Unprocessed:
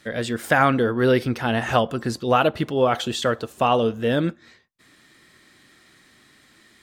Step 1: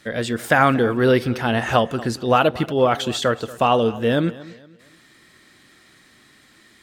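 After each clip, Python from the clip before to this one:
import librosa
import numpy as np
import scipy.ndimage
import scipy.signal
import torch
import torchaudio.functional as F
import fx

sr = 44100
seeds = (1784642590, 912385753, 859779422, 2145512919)

y = fx.echo_feedback(x, sr, ms=233, feedback_pct=35, wet_db=-19)
y = y * librosa.db_to_amplitude(2.0)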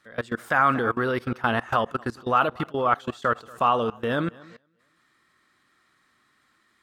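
y = fx.level_steps(x, sr, step_db=22)
y = fx.peak_eq(y, sr, hz=1200.0, db=12.0, octaves=0.93)
y = y * librosa.db_to_amplitude(-4.0)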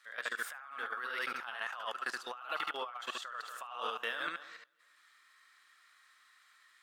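y = scipy.signal.sosfilt(scipy.signal.butter(2, 1300.0, 'highpass', fs=sr, output='sos'), x)
y = y + 10.0 ** (-3.5 / 20.0) * np.pad(y, (int(73 * sr / 1000.0), 0))[:len(y)]
y = fx.over_compress(y, sr, threshold_db=-36.0, ratio=-1.0)
y = y * librosa.db_to_amplitude(-5.0)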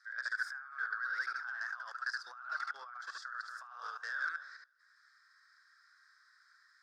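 y = fx.fold_sine(x, sr, drive_db=5, ceiling_db=-21.0)
y = fx.double_bandpass(y, sr, hz=2800.0, octaves=1.7)
y = y * librosa.db_to_amplitude(-2.0)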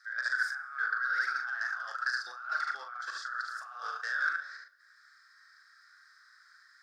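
y = fx.notch(x, sr, hz=980.0, q=6.2)
y = fx.doubler(y, sr, ms=40.0, db=-7)
y = fx.rev_plate(y, sr, seeds[0], rt60_s=1.0, hf_ratio=0.85, predelay_ms=0, drr_db=18.0)
y = y * librosa.db_to_amplitude(5.5)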